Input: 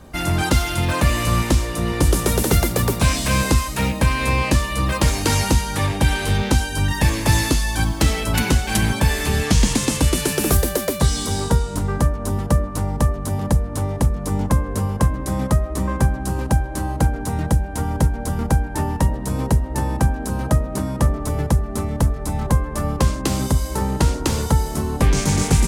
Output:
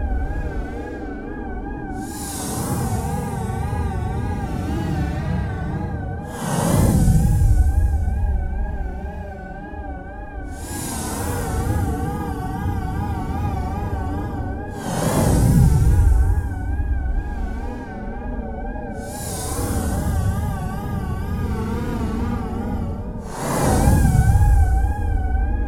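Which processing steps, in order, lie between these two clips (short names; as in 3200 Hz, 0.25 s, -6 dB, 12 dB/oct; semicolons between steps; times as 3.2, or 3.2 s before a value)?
Paulstretch 17×, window 0.05 s, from 17.12; wow and flutter 83 cents; gain -1 dB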